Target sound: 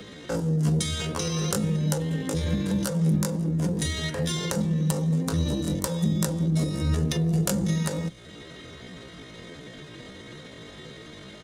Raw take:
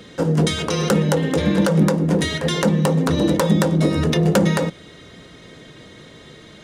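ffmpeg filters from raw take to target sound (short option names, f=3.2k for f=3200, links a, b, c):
-filter_complex "[0:a]acrossover=split=140|5000[a][b][c];[b]acompressor=threshold=-29dB:ratio=8[d];[a][d][c]amix=inputs=3:normalize=0,atempo=0.58"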